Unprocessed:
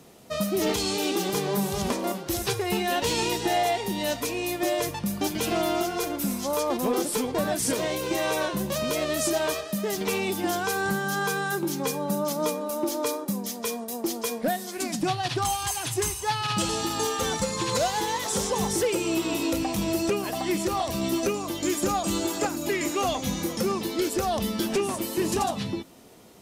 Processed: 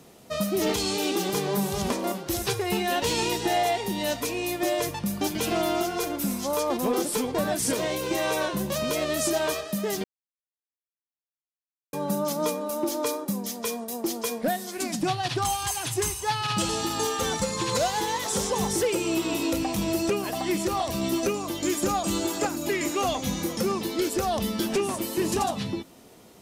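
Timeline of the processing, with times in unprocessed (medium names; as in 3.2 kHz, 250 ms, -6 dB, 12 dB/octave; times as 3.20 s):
10.04–11.93 s: mute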